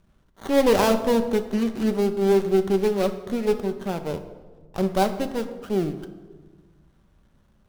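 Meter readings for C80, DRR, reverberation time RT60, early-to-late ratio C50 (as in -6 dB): 13.0 dB, 7.0 dB, 1.4 s, 11.0 dB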